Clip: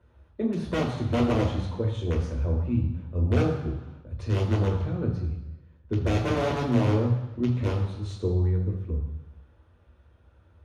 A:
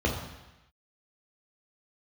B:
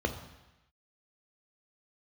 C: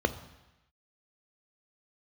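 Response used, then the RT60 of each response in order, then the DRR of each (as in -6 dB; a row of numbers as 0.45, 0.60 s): A; 1.0, 1.0, 1.0 s; -1.5, 5.5, 10.5 dB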